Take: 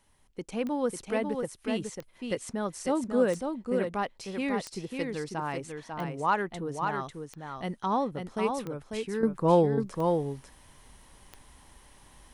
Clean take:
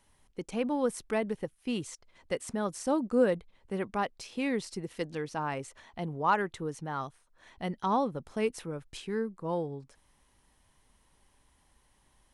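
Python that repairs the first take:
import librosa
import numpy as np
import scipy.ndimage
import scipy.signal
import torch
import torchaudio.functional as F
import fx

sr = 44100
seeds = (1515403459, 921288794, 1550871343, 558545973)

y = fx.fix_declick_ar(x, sr, threshold=10.0)
y = fx.fix_echo_inverse(y, sr, delay_ms=546, level_db=-5.0)
y = fx.gain(y, sr, db=fx.steps((0.0, 0.0), (9.23, -11.0)))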